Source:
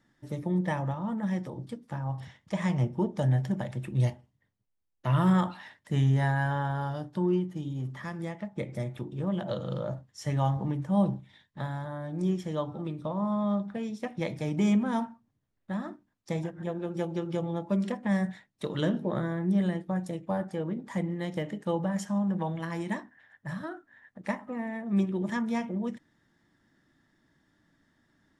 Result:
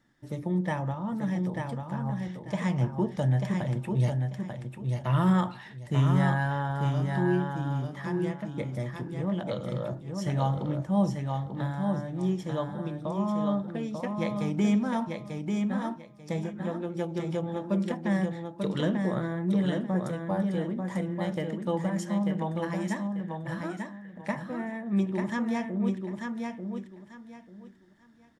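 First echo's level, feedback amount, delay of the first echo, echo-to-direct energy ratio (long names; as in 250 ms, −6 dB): −4.5 dB, 23%, 891 ms, −4.5 dB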